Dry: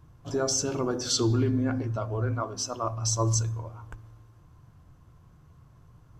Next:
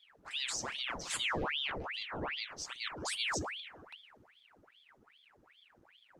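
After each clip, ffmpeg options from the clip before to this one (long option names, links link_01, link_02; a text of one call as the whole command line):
ffmpeg -i in.wav -af "aeval=exprs='val(0)*sin(2*PI*1800*n/s+1800*0.9/2.5*sin(2*PI*2.5*n/s))':channel_layout=same,volume=-8dB" out.wav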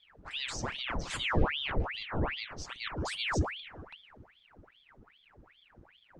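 ffmpeg -i in.wav -af "aemphasis=mode=reproduction:type=bsi,volume=3.5dB" out.wav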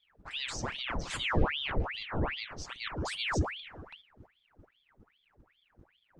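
ffmpeg -i in.wav -af "agate=range=-8dB:threshold=-54dB:ratio=16:detection=peak" out.wav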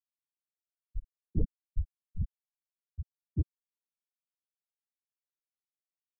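ffmpeg -i in.wav -af "afftfilt=real='re*gte(hypot(re,im),0.224)':imag='im*gte(hypot(re,im),0.224)':win_size=1024:overlap=0.75,asoftclip=type=tanh:threshold=-19.5dB,volume=2dB" out.wav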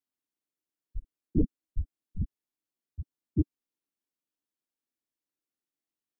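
ffmpeg -i in.wav -af "equalizer=frequency=290:width=1.5:gain=14.5" out.wav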